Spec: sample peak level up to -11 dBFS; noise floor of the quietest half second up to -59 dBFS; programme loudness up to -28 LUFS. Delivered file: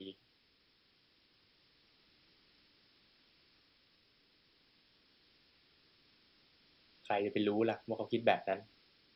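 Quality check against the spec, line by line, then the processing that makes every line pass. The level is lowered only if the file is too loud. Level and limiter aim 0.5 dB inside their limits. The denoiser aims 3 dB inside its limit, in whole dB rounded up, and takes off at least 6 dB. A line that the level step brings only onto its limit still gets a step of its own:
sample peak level -16.0 dBFS: OK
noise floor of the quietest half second -72 dBFS: OK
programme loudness -35.5 LUFS: OK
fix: none

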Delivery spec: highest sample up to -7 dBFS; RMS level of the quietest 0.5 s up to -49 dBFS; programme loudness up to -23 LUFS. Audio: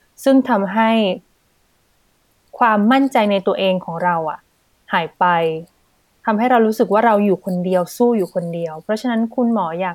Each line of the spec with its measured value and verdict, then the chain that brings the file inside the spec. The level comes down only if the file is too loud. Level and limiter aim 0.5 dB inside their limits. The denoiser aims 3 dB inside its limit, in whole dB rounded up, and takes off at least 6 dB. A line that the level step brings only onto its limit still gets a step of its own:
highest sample -3.0 dBFS: fail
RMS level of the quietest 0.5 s -60 dBFS: OK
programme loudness -17.0 LUFS: fail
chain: gain -6.5 dB

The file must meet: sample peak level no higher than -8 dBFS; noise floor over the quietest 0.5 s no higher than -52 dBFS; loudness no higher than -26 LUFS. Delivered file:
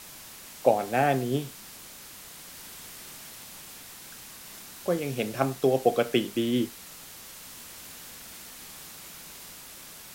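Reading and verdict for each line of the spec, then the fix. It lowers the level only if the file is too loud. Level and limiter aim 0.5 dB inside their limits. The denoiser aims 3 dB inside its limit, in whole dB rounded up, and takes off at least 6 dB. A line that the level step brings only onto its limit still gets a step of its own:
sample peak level -6.5 dBFS: fail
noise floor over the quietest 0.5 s -46 dBFS: fail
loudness -27.0 LUFS: OK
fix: denoiser 9 dB, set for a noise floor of -46 dBFS; limiter -8.5 dBFS

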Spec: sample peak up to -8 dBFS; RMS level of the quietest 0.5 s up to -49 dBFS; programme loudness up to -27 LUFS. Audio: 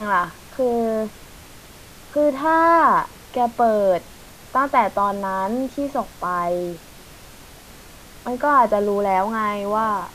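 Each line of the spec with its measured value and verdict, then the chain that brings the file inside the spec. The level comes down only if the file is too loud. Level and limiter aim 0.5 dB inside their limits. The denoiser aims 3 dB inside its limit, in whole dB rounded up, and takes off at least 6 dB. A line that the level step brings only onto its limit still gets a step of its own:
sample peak -4.5 dBFS: fail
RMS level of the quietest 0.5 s -43 dBFS: fail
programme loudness -20.5 LUFS: fail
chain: gain -7 dB

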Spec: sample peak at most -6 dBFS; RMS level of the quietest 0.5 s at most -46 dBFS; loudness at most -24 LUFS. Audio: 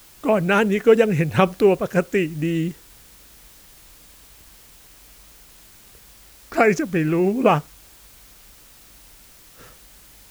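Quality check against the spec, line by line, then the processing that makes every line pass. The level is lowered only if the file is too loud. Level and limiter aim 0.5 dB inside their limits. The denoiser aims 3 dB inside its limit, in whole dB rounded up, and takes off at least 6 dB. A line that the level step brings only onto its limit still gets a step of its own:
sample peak -4.0 dBFS: fail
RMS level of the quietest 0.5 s -48 dBFS: OK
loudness -19.5 LUFS: fail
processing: gain -5 dB

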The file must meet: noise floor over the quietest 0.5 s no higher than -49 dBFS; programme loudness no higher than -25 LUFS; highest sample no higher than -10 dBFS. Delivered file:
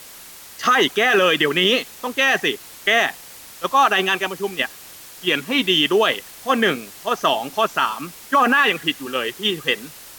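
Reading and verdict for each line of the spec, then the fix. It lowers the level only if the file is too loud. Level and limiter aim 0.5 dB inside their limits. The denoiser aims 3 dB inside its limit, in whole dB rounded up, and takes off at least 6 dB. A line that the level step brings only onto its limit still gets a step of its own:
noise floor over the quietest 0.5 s -41 dBFS: fail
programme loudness -19.0 LUFS: fail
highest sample -5.5 dBFS: fail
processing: denoiser 6 dB, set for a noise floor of -41 dBFS; gain -6.5 dB

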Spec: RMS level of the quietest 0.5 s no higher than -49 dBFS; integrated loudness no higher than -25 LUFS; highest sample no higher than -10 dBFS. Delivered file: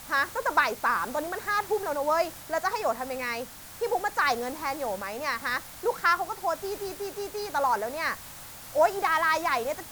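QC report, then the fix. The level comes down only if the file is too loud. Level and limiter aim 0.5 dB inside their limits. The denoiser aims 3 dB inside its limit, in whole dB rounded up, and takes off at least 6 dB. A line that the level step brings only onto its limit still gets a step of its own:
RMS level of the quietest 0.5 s -44 dBFS: fail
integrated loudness -28.0 LUFS: OK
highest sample -9.0 dBFS: fail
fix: denoiser 8 dB, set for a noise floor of -44 dBFS; limiter -10.5 dBFS

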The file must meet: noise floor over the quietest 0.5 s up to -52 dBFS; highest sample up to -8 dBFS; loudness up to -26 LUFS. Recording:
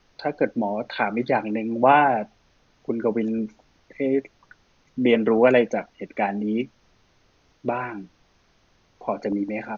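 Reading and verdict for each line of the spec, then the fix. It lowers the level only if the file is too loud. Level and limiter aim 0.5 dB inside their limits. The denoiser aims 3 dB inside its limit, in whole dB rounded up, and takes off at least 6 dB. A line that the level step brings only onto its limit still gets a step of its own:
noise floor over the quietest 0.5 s -62 dBFS: OK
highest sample -3.5 dBFS: fail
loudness -23.5 LUFS: fail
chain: gain -3 dB; limiter -8.5 dBFS

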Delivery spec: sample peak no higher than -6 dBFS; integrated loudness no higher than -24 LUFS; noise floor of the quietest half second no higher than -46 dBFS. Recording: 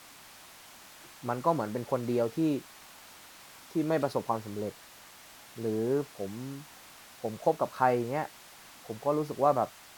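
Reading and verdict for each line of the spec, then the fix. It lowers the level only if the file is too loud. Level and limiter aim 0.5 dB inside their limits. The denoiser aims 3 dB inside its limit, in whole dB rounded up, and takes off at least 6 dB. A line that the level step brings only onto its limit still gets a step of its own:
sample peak -10.5 dBFS: OK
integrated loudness -31.5 LUFS: OK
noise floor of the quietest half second -52 dBFS: OK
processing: none

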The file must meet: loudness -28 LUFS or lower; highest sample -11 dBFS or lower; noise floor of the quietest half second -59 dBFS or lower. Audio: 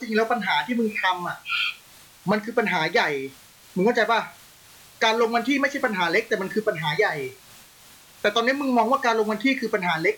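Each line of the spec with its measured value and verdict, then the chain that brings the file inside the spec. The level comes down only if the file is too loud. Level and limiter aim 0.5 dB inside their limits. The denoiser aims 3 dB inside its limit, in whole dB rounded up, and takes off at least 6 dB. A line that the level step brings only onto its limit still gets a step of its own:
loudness -23.0 LUFS: fail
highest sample -10.0 dBFS: fail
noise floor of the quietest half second -50 dBFS: fail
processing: denoiser 7 dB, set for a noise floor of -50 dBFS; gain -5.5 dB

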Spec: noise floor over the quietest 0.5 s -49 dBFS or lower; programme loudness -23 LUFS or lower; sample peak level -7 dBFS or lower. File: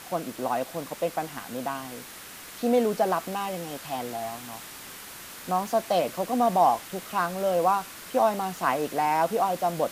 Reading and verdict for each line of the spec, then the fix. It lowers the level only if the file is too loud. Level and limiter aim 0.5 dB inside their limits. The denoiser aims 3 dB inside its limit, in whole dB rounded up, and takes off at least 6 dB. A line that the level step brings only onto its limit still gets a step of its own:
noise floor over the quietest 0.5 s -43 dBFS: fail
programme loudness -27.0 LUFS: OK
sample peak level -10.0 dBFS: OK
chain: denoiser 9 dB, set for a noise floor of -43 dBFS

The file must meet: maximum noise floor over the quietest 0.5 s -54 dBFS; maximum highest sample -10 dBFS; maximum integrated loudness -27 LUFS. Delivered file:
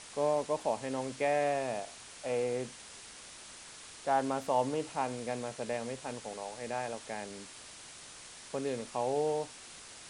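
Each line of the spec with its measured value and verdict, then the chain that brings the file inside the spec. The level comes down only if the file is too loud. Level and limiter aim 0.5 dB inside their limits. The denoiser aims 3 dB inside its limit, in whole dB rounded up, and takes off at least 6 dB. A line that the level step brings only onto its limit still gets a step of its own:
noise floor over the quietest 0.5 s -50 dBFS: fail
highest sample -16.5 dBFS: OK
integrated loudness -34.5 LUFS: OK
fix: denoiser 7 dB, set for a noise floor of -50 dBFS

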